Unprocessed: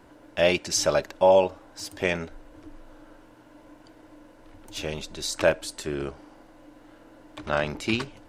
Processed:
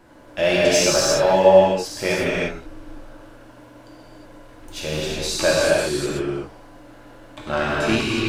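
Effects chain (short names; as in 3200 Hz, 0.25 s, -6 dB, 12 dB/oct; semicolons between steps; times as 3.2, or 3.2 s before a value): notch 920 Hz, Q 30; in parallel at -7.5 dB: hard clip -21.5 dBFS, distortion -6 dB; on the sum: non-linear reverb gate 0.39 s flat, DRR -6.5 dB; gain -2.5 dB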